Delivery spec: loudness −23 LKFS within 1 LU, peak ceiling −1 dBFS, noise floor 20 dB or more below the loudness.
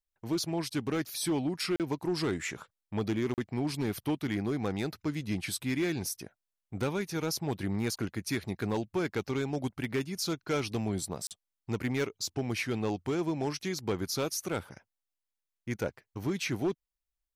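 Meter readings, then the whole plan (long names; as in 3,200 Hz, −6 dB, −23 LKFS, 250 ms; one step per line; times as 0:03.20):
share of clipped samples 1.0%; peaks flattened at −24.0 dBFS; number of dropouts 3; longest dropout 38 ms; integrated loudness −33.5 LKFS; sample peak −24.0 dBFS; target loudness −23.0 LKFS
→ clipped peaks rebuilt −24 dBFS
repair the gap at 0:01.76/0:03.34/0:11.27, 38 ms
level +10.5 dB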